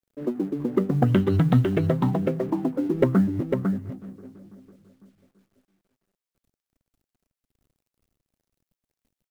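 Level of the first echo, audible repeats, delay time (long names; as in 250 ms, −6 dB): −5.0 dB, 1, 501 ms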